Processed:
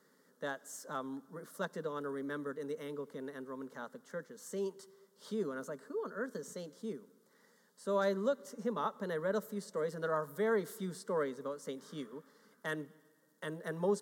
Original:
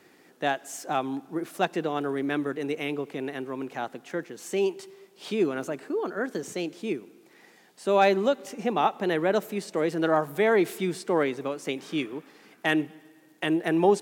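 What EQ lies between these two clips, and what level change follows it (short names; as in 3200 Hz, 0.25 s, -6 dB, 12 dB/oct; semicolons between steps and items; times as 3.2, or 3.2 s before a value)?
fixed phaser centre 500 Hz, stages 8; -7.5 dB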